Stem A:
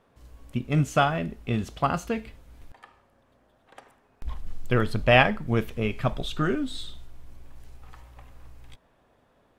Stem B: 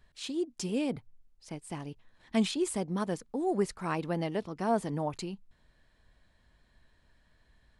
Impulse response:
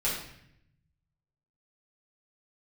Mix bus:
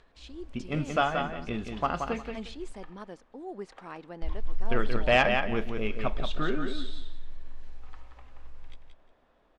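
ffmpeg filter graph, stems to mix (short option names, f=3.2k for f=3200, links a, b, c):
-filter_complex "[0:a]lowshelf=f=63:g=9,volume=-3dB,asplit=2[a][b];[b]volume=-6dB[c];[1:a]acompressor=mode=upward:threshold=-40dB:ratio=2.5,volume=-9dB[d];[c]aecho=0:1:178|356|534:1|0.21|0.0441[e];[a][d][e]amix=inputs=3:normalize=0,lowpass=5.1k,asoftclip=type=tanh:threshold=-9.5dB,equalizer=f=110:t=o:w=1.3:g=-12"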